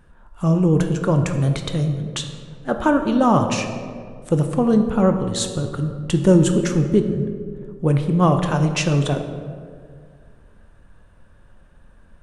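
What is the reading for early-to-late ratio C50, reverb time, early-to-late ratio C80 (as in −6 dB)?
7.5 dB, 2.0 s, 9.0 dB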